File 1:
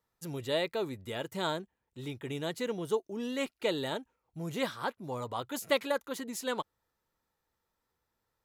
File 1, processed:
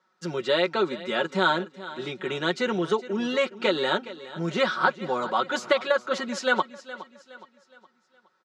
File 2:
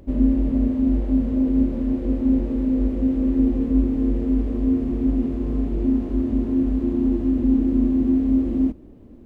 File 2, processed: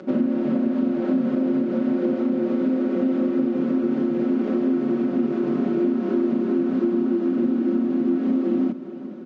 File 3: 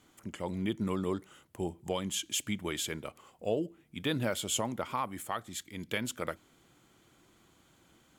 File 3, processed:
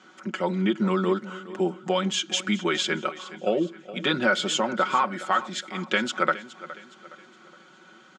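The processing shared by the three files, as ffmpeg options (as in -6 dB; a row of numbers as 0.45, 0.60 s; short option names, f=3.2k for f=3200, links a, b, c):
-filter_complex "[0:a]highpass=f=190:w=0.5412,highpass=f=190:w=1.3066,aecho=1:1:5.4:0.79,acompressor=threshold=-27dB:ratio=6,lowpass=f=5.9k:w=0.5412,lowpass=f=5.9k:w=1.3066,equalizer=f=1.4k:w=4.9:g=12,asplit=2[a][b];[b]aecho=0:1:416|832|1248|1664:0.158|0.065|0.0266|0.0109[c];[a][c]amix=inputs=2:normalize=0,volume=8.5dB"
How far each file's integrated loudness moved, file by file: +9.0, -1.0, +9.5 LU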